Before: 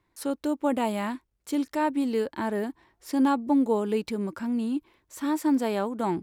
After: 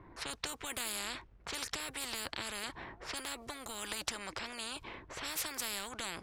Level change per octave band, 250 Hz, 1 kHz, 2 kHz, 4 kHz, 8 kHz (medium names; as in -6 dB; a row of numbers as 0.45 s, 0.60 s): -25.5 dB, -14.0 dB, -1.5 dB, +5.0 dB, +5.5 dB